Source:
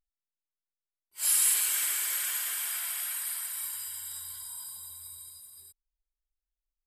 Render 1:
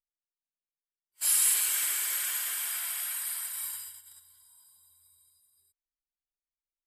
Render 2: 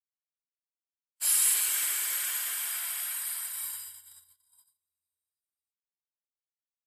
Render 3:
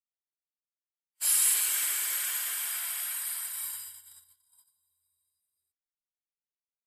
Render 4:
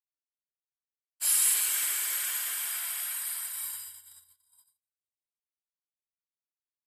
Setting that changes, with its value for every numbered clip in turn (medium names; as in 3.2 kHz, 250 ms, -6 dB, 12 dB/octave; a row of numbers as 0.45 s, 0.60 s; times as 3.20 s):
gate, range: -18 dB, -45 dB, -33 dB, -58 dB